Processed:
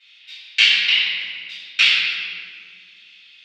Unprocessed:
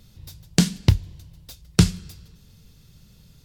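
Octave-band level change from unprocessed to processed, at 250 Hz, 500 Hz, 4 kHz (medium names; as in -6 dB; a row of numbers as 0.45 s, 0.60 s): under -30 dB, under -15 dB, +16.0 dB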